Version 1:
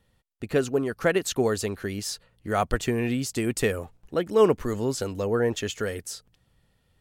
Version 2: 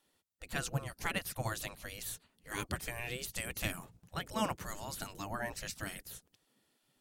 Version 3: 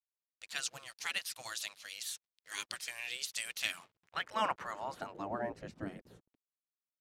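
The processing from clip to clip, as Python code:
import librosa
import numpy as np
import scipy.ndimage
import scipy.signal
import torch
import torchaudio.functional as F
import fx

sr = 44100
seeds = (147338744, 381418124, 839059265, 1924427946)

y1 = fx.spec_gate(x, sr, threshold_db=-15, keep='weak')
y1 = fx.bass_treble(y1, sr, bass_db=15, treble_db=6)
y1 = y1 * 10.0 ** (-4.5 / 20.0)
y2 = fx.backlash(y1, sr, play_db=-51.5)
y2 = fx.filter_sweep_bandpass(y2, sr, from_hz=4700.0, to_hz=310.0, start_s=3.48, end_s=5.66, q=1.0)
y2 = y2 * 10.0 ** (6.5 / 20.0)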